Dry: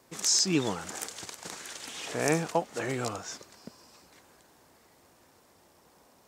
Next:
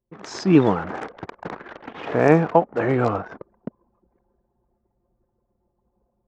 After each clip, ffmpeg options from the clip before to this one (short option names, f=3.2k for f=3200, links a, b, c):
-af "lowpass=1.5k,anlmdn=0.0158,dynaudnorm=f=190:g=3:m=12dB,volume=1.5dB"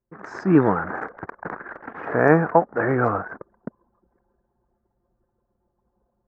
-af "highshelf=f=2.3k:t=q:w=3:g=-12.5,volume=-1.5dB"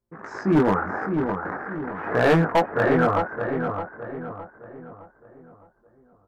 -filter_complex "[0:a]flanger=delay=17.5:depth=4.9:speed=0.42,asoftclip=type=hard:threshold=-16.5dB,asplit=2[a][b];[b]adelay=613,lowpass=f=2k:p=1,volume=-6dB,asplit=2[c][d];[d]adelay=613,lowpass=f=2k:p=1,volume=0.43,asplit=2[e][f];[f]adelay=613,lowpass=f=2k:p=1,volume=0.43,asplit=2[g][h];[h]adelay=613,lowpass=f=2k:p=1,volume=0.43,asplit=2[i][j];[j]adelay=613,lowpass=f=2k:p=1,volume=0.43[k];[c][e][g][i][k]amix=inputs=5:normalize=0[l];[a][l]amix=inputs=2:normalize=0,volume=3.5dB"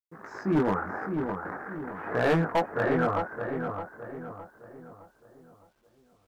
-af "acrusher=bits=10:mix=0:aa=0.000001,volume=-6dB"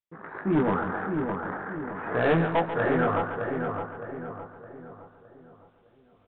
-filter_complex "[0:a]asplit=2[a][b];[b]asoftclip=type=tanh:threshold=-31dB,volume=-9dB[c];[a][c]amix=inputs=2:normalize=0,aecho=1:1:140|280|420|560|700:0.316|0.155|0.0759|0.0372|0.0182,aresample=8000,aresample=44100"